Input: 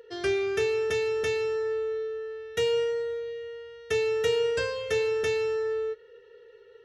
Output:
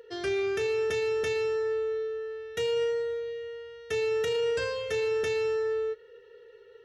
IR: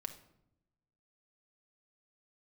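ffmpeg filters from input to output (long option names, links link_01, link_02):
-af "alimiter=limit=-22dB:level=0:latency=1:release=15"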